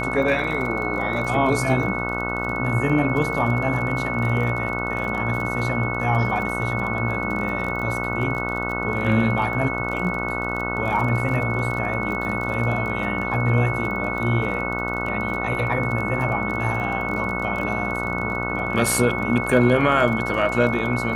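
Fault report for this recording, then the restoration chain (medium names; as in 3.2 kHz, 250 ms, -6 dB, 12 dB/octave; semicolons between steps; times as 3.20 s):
buzz 60 Hz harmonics 25 -28 dBFS
crackle 32 per s -29 dBFS
whine 2.2 kHz -27 dBFS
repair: de-click; de-hum 60 Hz, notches 25; band-stop 2.2 kHz, Q 30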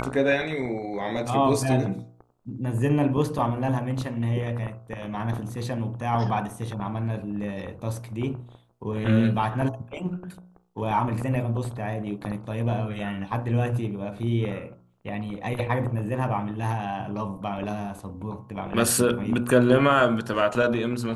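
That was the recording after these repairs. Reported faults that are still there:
nothing left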